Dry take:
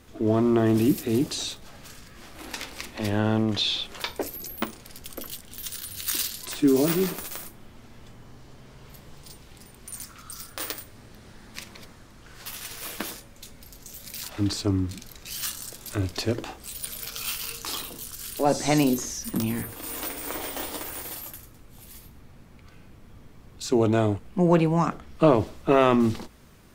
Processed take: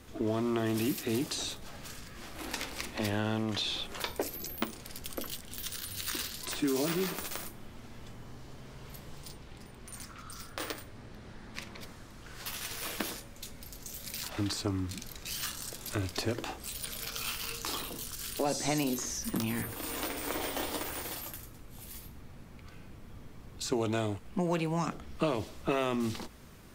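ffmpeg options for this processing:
ffmpeg -i in.wav -filter_complex "[0:a]asettb=1/sr,asplit=3[link_01][link_02][link_03];[link_01]atrim=end=9.304[link_04];[link_02]atrim=start=9.3:end=11.81,asetpts=PTS-STARTPTS,afade=type=in:duration=0.004:curve=qsin,afade=type=out:start_time=2.506:duration=0.004:curve=qsin,lowpass=frequency=3200:poles=1[link_05];[link_03]atrim=start=11.806[link_06];[link_04][link_05]acrossfade=duration=0.004:curve1=hsin:curve2=qsin[link_07];[link_07][link_06]acrossfade=duration=0.004:curve1=qsin:curve2=hsin,acrossover=split=730|2200|6600[link_08][link_09][link_10][link_11];[link_08]acompressor=threshold=-31dB:ratio=4[link_12];[link_09]acompressor=threshold=-39dB:ratio=4[link_13];[link_10]acompressor=threshold=-39dB:ratio=4[link_14];[link_11]acompressor=threshold=-41dB:ratio=4[link_15];[link_12][link_13][link_14][link_15]amix=inputs=4:normalize=0" out.wav

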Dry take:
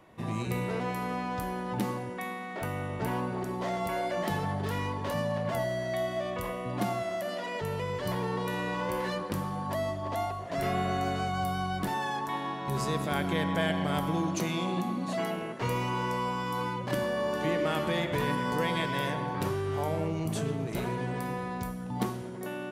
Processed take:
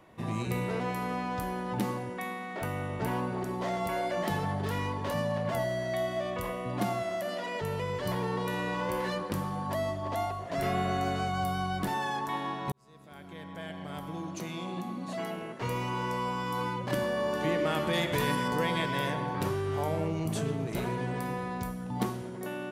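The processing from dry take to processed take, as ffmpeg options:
ffmpeg -i in.wav -filter_complex "[0:a]asettb=1/sr,asplit=3[link_01][link_02][link_03];[link_01]atrim=end=17.934[link_04];[link_02]atrim=start=17.93:end=18.48,asetpts=PTS-STARTPTS,afade=type=in:duration=0.004:curve=qsin,afade=type=out:start_time=0.546:duration=0.004:curve=qsin,highshelf=frequency=3400:gain=8[link_05];[link_03]atrim=start=18.476[link_06];[link_04][link_05]acrossfade=duration=0.004:curve1=hsin:curve2=qsin[link_07];[link_07][link_06]acrossfade=duration=0.004:curve1=qsin:curve2=hsin,asplit=2[link_08][link_09];[link_08]atrim=end=12.72,asetpts=PTS-STARTPTS,afade=type=out:start_time=12.716:duration=0.004:curve=hsin[link_10];[link_09]atrim=start=12.72,asetpts=PTS-STARTPTS,afade=type=in:duration=3.94[link_11];[link_10][link_11]concat=n=2:v=0:a=1" out.wav

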